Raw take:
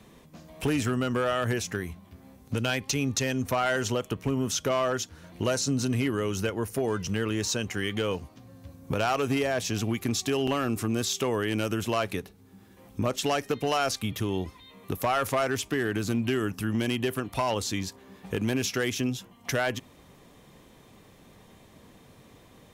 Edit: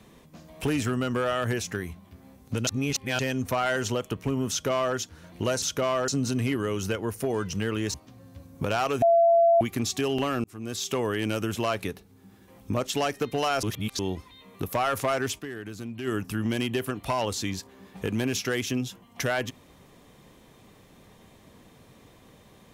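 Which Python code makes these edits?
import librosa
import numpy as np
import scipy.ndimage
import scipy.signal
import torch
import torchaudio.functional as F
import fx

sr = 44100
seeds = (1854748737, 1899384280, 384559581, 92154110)

y = fx.edit(x, sr, fx.reverse_span(start_s=2.67, length_s=0.52),
    fx.duplicate(start_s=4.5, length_s=0.46, to_s=5.62),
    fx.cut(start_s=7.48, length_s=0.75),
    fx.bleep(start_s=9.31, length_s=0.59, hz=676.0, db=-15.5),
    fx.fade_in_span(start_s=10.73, length_s=0.5),
    fx.reverse_span(start_s=13.92, length_s=0.36),
    fx.fade_down_up(start_s=15.67, length_s=0.7, db=-9.5, fade_s=0.24, curve='exp'), tone=tone)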